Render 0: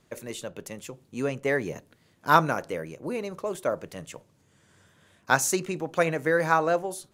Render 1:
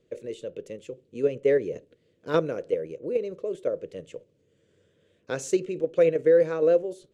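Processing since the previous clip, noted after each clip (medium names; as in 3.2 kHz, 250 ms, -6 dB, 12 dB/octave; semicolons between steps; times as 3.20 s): FFT filter 240 Hz 0 dB, 490 Hz +13 dB, 820 Hz -14 dB, 3 kHz 0 dB, 5.1 kHz -7 dB, 7.9 kHz -7 dB, 13 kHz -23 dB; in parallel at +1 dB: level held to a coarse grid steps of 18 dB; on the sum: trim -8.5 dB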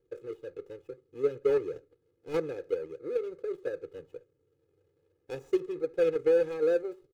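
median filter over 41 samples; comb 2.4 ms, depth 92%; trim -8 dB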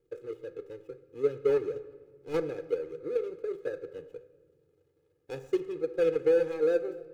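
reverberation RT60 1.5 s, pre-delay 7 ms, DRR 11.5 dB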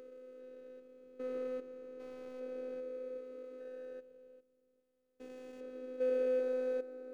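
spectrogram pixelated in time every 400 ms; robot voice 255 Hz; trim -4.5 dB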